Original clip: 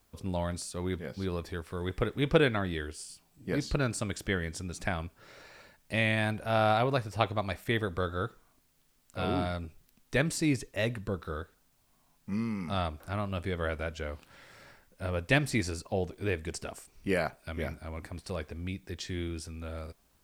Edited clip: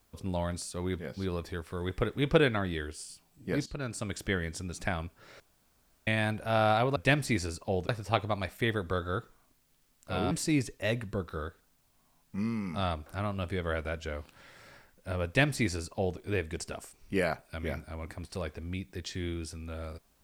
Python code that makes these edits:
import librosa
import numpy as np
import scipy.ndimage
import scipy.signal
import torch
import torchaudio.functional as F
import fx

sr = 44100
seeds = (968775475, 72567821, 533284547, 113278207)

y = fx.edit(x, sr, fx.fade_in_from(start_s=3.66, length_s=0.53, floor_db=-14.0),
    fx.room_tone_fill(start_s=5.4, length_s=0.67),
    fx.cut(start_s=9.38, length_s=0.87),
    fx.duplicate(start_s=15.2, length_s=0.93, to_s=6.96), tone=tone)